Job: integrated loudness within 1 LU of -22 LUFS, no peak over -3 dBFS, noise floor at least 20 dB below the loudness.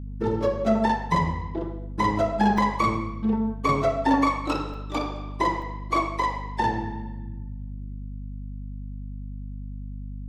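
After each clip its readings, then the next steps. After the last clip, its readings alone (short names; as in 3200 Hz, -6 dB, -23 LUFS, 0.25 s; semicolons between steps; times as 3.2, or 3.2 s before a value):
dropouts 3; longest dropout 3.2 ms; hum 50 Hz; harmonics up to 250 Hz; hum level -32 dBFS; loudness -25.5 LUFS; peak -9.0 dBFS; loudness target -22.0 LUFS
-> interpolate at 2.58/4.74/5.62, 3.2 ms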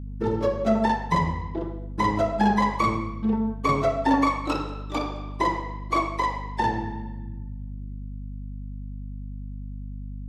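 dropouts 0; hum 50 Hz; harmonics up to 250 Hz; hum level -32 dBFS
-> de-hum 50 Hz, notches 5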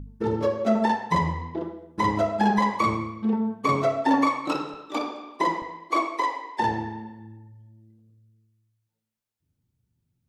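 hum none; loudness -25.5 LUFS; peak -9.0 dBFS; loudness target -22.0 LUFS
-> gain +3.5 dB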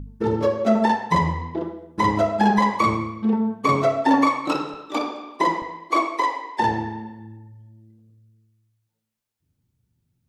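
loudness -22.0 LUFS; peak -5.5 dBFS; noise floor -79 dBFS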